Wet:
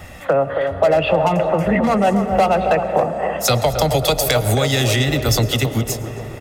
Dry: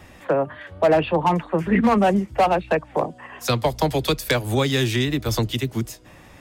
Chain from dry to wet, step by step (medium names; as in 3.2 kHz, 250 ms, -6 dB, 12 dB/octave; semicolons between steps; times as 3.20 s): dynamic bell 7 kHz, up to +4 dB, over -40 dBFS, Q 0.78; peak limiter -12.5 dBFS, peak gain reduction 4 dB; treble shelf 11 kHz +5 dB; algorithmic reverb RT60 4.1 s, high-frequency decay 0.3×, pre-delay 70 ms, DRR 13.5 dB; compression, threshold -21 dBFS, peak gain reduction 6 dB; comb 1.5 ms, depth 43%; band-passed feedback delay 272 ms, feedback 63%, band-pass 570 Hz, level -6 dB; trim +7.5 dB